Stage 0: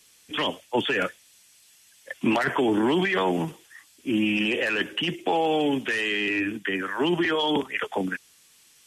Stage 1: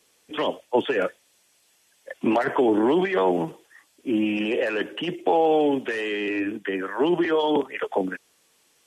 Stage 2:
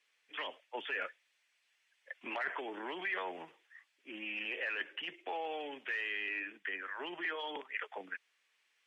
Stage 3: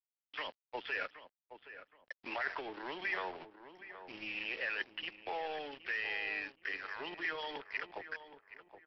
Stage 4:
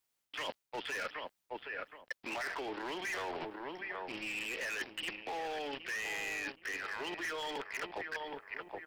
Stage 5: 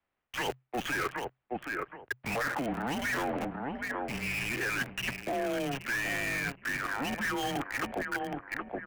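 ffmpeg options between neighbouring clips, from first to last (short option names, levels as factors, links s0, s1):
-af "equalizer=f=530:t=o:w=2.4:g=13,volume=0.422"
-af "bandpass=f=2100:t=q:w=1.9:csg=0,volume=0.596"
-filter_complex "[0:a]aresample=11025,aeval=exprs='sgn(val(0))*max(abs(val(0))-0.00316,0)':c=same,aresample=44100,asplit=2[s0][s1];[s1]adelay=771,lowpass=f=1600:p=1,volume=0.282,asplit=2[s2][s3];[s3]adelay=771,lowpass=f=1600:p=1,volume=0.34,asplit=2[s4][s5];[s5]adelay=771,lowpass=f=1600:p=1,volume=0.34,asplit=2[s6][s7];[s7]adelay=771,lowpass=f=1600:p=1,volume=0.34[s8];[s0][s2][s4][s6][s8]amix=inputs=5:normalize=0,volume=1.19"
-af "asoftclip=type=hard:threshold=0.0112,areverse,acompressor=threshold=0.00282:ratio=6,areverse,volume=4.73"
-filter_complex "[0:a]acrossover=split=200|940|2600[s0][s1][s2][s3];[s3]acrusher=bits=5:dc=4:mix=0:aa=0.000001[s4];[s0][s1][s2][s4]amix=inputs=4:normalize=0,afreqshift=-130,volume=2.37"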